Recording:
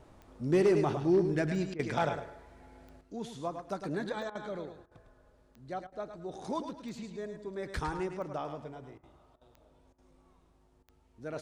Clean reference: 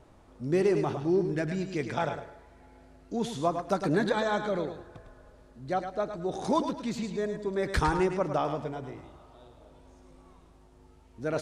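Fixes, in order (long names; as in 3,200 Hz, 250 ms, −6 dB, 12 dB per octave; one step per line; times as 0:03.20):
clipped peaks rebuilt −19 dBFS
click removal
repair the gap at 0:01.74/0:04.30/0:04.86/0:05.87/0:08.98/0:09.36/0:09.93/0:10.83, 51 ms
level correction +9 dB, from 0:03.01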